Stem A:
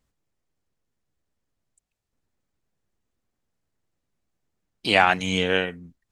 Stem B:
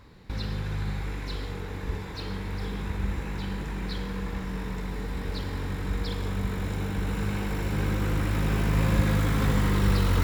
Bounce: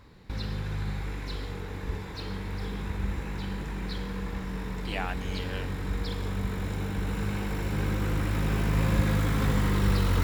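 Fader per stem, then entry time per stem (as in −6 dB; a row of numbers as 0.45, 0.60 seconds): −16.5, −1.5 decibels; 0.00, 0.00 seconds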